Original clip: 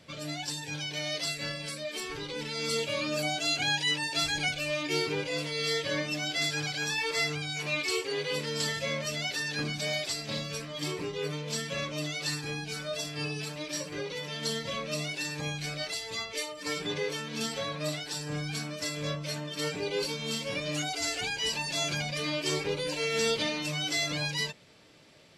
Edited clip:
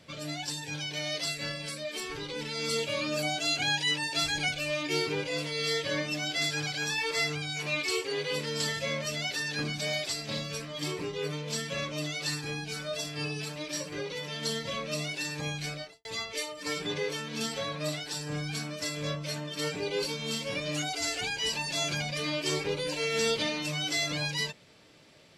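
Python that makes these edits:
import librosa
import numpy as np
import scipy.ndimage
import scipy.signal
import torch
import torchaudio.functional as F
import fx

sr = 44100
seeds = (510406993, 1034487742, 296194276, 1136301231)

y = fx.studio_fade_out(x, sr, start_s=15.67, length_s=0.38)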